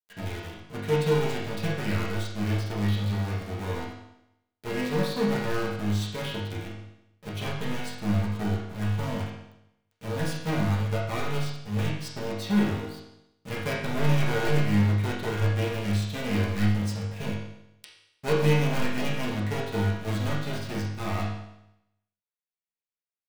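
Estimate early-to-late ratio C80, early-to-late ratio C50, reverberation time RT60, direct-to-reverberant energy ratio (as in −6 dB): 5.0 dB, 2.0 dB, 0.85 s, −8.0 dB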